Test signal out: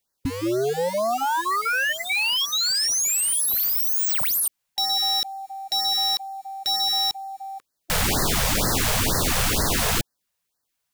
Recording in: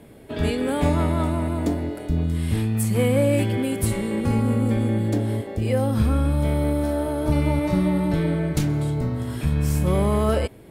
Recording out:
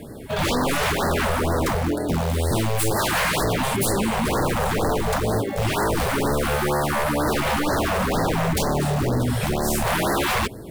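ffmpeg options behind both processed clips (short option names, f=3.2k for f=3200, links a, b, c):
-af "acrusher=bits=6:mode=log:mix=0:aa=0.000001,aeval=exprs='0.0562*(abs(mod(val(0)/0.0562+3,4)-2)-1)':c=same,afftfilt=real='re*(1-between(b*sr/1024,270*pow(2900/270,0.5+0.5*sin(2*PI*2.1*pts/sr))/1.41,270*pow(2900/270,0.5+0.5*sin(2*PI*2.1*pts/sr))*1.41))':imag='im*(1-between(b*sr/1024,270*pow(2900/270,0.5+0.5*sin(2*PI*2.1*pts/sr))/1.41,270*pow(2900/270,0.5+0.5*sin(2*PI*2.1*pts/sr))*1.41))':win_size=1024:overlap=0.75,volume=9dB"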